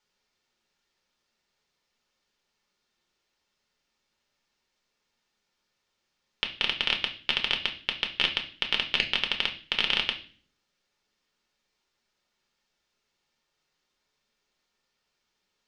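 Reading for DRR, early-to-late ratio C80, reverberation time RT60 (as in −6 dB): 3.0 dB, 17.0 dB, 0.45 s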